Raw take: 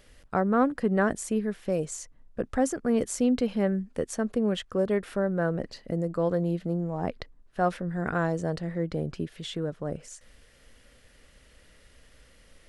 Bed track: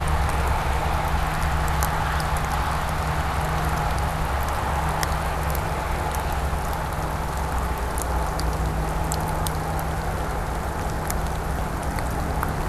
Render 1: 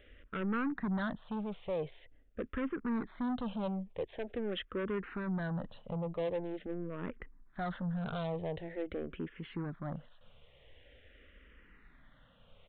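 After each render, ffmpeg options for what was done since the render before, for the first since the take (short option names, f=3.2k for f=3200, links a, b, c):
-filter_complex "[0:a]aresample=8000,asoftclip=type=tanh:threshold=-29.5dB,aresample=44100,asplit=2[a][b];[b]afreqshift=-0.45[c];[a][c]amix=inputs=2:normalize=1"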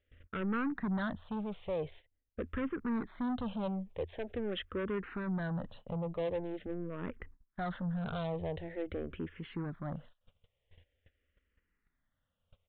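-af "equalizer=f=84:t=o:w=0.29:g=14,agate=range=-22dB:threshold=-52dB:ratio=16:detection=peak"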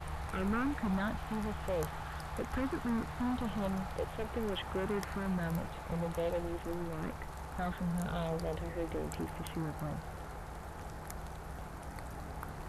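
-filter_complex "[1:a]volume=-18.5dB[a];[0:a][a]amix=inputs=2:normalize=0"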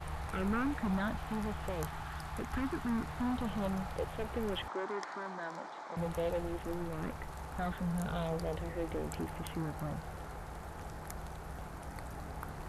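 -filter_complex "[0:a]asettb=1/sr,asplit=3[a][b][c];[a]atrim=end=1.694[d];[b]atrim=start=1.69:end=3.06,asetpts=PTS-STARTPTS,afade=t=in:d=0.004:c=qsin,afade=t=out:st=1.366:d=0.004:c=qsin,equalizer=f=520:t=o:w=0.3:g=-10[e];[c]atrim=start=3.056[f];[d][e]acrossfade=d=0.004:c1=hsin:c2=qsin[g];[g][f]acrossfade=d=0.004:c1=qsin:c2=hsin,asettb=1/sr,asplit=3[h][i][j];[h]atrim=end=4.684[k];[i]atrim=start=4.68:end=5.97,asetpts=PTS-STARTPTS,afade=t=in:d=0.004:c=qsin,afade=t=out:st=1.286:d=0.004:c=qsin,highpass=f=290:w=0.5412,highpass=f=290:w=1.3066,equalizer=f=470:t=q:w=4:g=-7,equalizer=f=980:t=q:w=4:g=4,equalizer=f=2.7k:t=q:w=4:g=-10,lowpass=f=6.9k:w=0.5412,lowpass=f=6.9k:w=1.3066[l];[j]atrim=start=5.966[m];[k][l]acrossfade=d=0.004:c1=hsin:c2=qsin[n];[n][m]acrossfade=d=0.004:c1=qsin:c2=hsin"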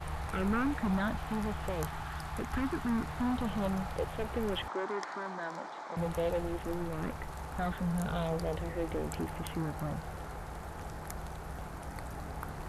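-af "volume=2.5dB"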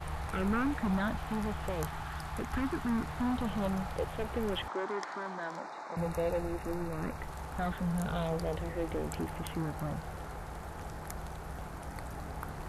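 -filter_complex "[0:a]asettb=1/sr,asplit=3[a][b][c];[a]atrim=end=5.594[d];[b]atrim=start=5.59:end=7.18,asetpts=PTS-STARTPTS,afade=t=in:d=0.004:c=qsin,afade=t=out:st=1.586:d=0.004:c=qsin,asuperstop=centerf=3200:order=12:qfactor=4.7[e];[c]atrim=start=7.176[f];[d][e]acrossfade=d=0.004:c1=hsin:c2=qsin[g];[g][f]acrossfade=d=0.004:c1=qsin:c2=hsin"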